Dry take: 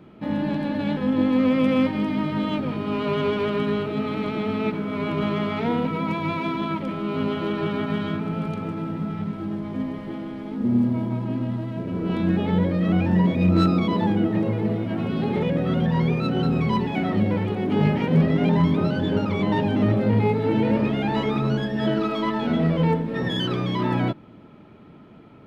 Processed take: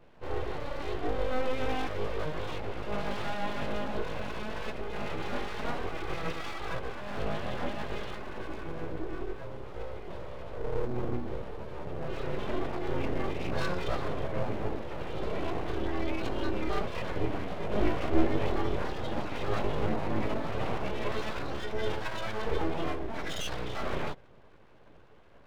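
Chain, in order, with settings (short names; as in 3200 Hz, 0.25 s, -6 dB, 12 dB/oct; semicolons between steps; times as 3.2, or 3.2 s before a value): chorus voices 4, 0.35 Hz, delay 16 ms, depth 3.6 ms; full-wave rectifier; gain -4 dB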